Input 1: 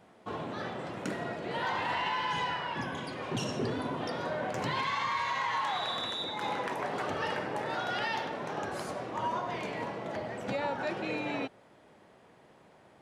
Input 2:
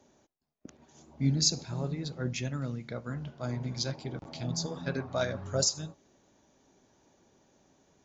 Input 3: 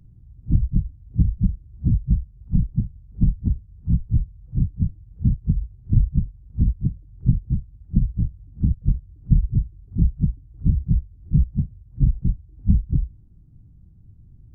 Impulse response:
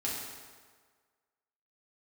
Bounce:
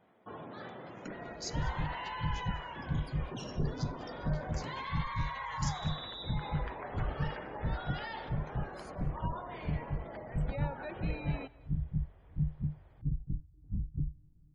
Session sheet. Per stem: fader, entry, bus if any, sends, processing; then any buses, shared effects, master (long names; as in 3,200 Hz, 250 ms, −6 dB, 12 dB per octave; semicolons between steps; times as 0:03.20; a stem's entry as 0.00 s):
−8.0 dB, 0.00 s, no send, echo send −22 dB, gate on every frequency bin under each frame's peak −25 dB strong
−15.5 dB, 0.00 s, no send, echo send −21.5 dB, Butterworth high-pass 1,700 Hz; downward expander −57 dBFS
−2.5 dB, 1.05 s, no send, no echo send, brickwall limiter −14 dBFS, peak gain reduction 9.5 dB; tuned comb filter 150 Hz, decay 0.24 s, harmonics all, mix 80%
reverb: not used
echo: single-tap delay 199 ms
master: notch filter 2,700 Hz, Q 29